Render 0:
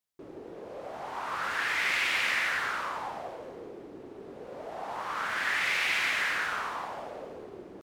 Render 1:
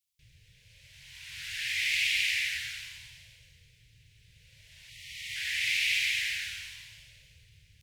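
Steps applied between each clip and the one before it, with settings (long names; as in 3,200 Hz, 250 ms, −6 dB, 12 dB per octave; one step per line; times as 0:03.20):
inverse Chebyshev band-stop filter 210–1,300 Hz, stop band 40 dB
gain on a spectral selection 0:04.89–0:05.36, 680–1,800 Hz −23 dB
level +4 dB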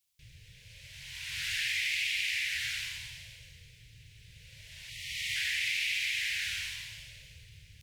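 downward compressor 6 to 1, threshold −35 dBFS, peak gain reduction 10.5 dB
level +5.5 dB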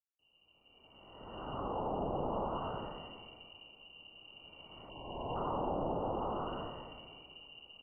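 fade in at the beginning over 2.16 s
voice inversion scrambler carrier 2,900 Hz
level −2 dB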